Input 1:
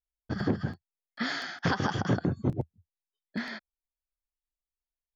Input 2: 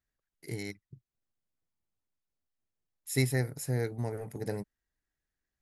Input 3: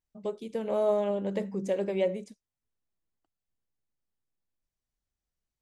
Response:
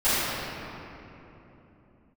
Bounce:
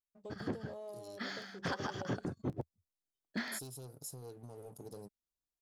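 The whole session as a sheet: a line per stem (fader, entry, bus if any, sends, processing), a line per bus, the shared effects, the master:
-0.5 dB, 0.00 s, no bus, no send, upward expander 1.5:1, over -37 dBFS; auto duck -9 dB, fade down 0.20 s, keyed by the third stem
-6.5 dB, 0.45 s, bus A, no send, soft clip -28 dBFS, distortion -10 dB
-14.5 dB, 0.00 s, bus A, no send, dry
bus A: 0.0 dB, Butterworth band-stop 2000 Hz, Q 0.96; compressor 6:1, threshold -48 dBFS, peak gain reduction 11.5 dB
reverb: off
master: tone controls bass -5 dB, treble +3 dB; sample leveller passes 1

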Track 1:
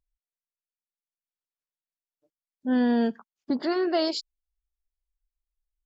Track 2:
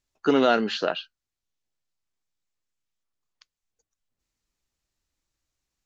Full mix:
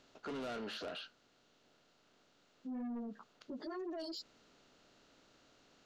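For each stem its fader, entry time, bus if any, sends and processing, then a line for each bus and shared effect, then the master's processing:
-4.5 dB, 0.00 s, no send, spectral gate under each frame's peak -20 dB strong; ensemble effect
-8.0 dB, 0.00 s, no send, per-bin compression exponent 0.6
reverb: off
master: soft clip -29.5 dBFS, distortion -8 dB; limiter -38.5 dBFS, peak gain reduction 9 dB

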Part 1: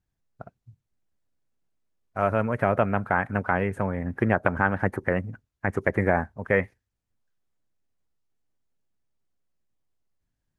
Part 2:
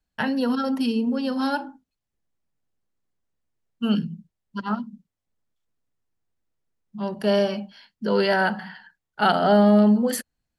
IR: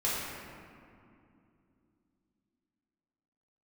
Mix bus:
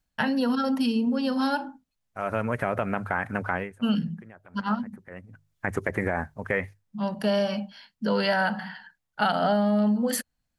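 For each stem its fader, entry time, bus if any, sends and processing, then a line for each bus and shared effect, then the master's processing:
-0.5 dB, 0.00 s, no send, high shelf 2300 Hz +9.5 dB; notches 50/100/150 Hz; limiter -11 dBFS, peak gain reduction 9 dB; auto duck -23 dB, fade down 0.25 s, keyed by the second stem
+1.0 dB, 0.00 s, no send, bell 380 Hz -12.5 dB 0.25 oct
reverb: off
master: compressor 6:1, threshold -20 dBFS, peak gain reduction 8 dB

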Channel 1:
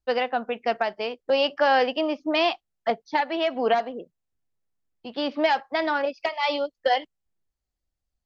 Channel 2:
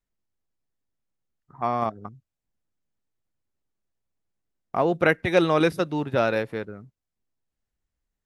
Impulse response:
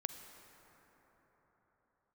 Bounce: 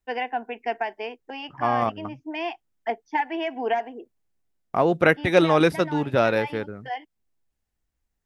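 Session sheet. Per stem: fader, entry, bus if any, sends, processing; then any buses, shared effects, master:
0.0 dB, 0.00 s, no send, fixed phaser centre 830 Hz, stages 8; auto duck -8 dB, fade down 0.35 s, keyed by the second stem
+2.0 dB, 0.00 s, no send, dry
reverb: off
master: dry

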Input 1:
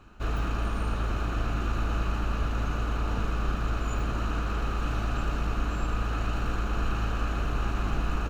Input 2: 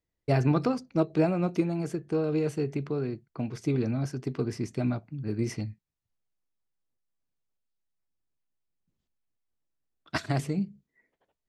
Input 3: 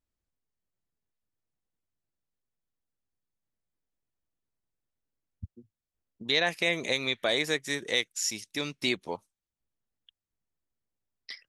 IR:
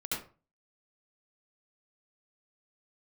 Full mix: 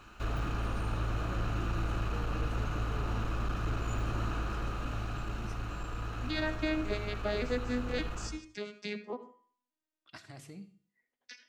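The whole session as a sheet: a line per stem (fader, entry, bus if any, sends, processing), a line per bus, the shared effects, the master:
+2.5 dB, 0.00 s, send -15.5 dB, hard clip -23 dBFS, distortion -17 dB; auto duck -6 dB, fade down 1.10 s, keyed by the third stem
-11.0 dB, 0.00 s, send -19 dB, limiter -21.5 dBFS, peak gain reduction 9 dB
+1.0 dB, 0.00 s, send -15.5 dB, arpeggiated vocoder minor triad, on G#3, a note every 0.57 s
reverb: on, RT60 0.35 s, pre-delay 65 ms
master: resonator 110 Hz, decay 0.56 s, harmonics odd, mix 60%; mismatched tape noise reduction encoder only

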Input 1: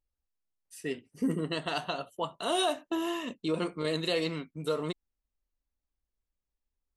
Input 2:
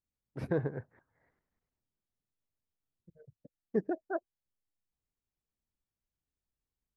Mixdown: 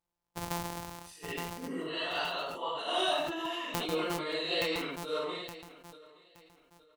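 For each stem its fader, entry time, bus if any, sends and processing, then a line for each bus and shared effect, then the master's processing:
-1.5 dB, 0.45 s, no send, echo send -22.5 dB, phase scrambler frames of 0.2 s; three-band isolator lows -16 dB, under 350 Hz, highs -20 dB, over 4200 Hz
-1.5 dB, 0.00 s, no send, echo send -4.5 dB, sample sorter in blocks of 256 samples; bell 910 Hz +12 dB 0.64 oct; compressor 5:1, threshold -34 dBFS, peak gain reduction 12 dB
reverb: off
echo: feedback echo 0.87 s, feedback 32%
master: high shelf 3500 Hz +11.5 dB; sustainer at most 37 dB/s

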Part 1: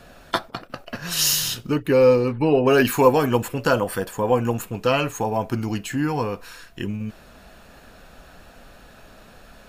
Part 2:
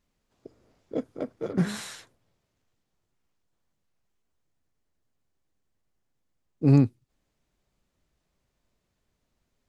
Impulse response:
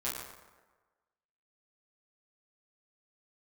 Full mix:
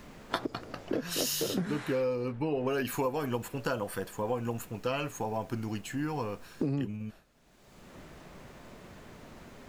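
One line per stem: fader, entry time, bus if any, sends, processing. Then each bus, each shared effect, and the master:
-3.5 dB, 0.00 s, no send, expander -36 dBFS; auto duck -6 dB, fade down 1.35 s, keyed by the second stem
+0.5 dB, 0.00 s, no send, three-band squash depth 100%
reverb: off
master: compressor 6:1, threshold -27 dBFS, peak gain reduction 9 dB

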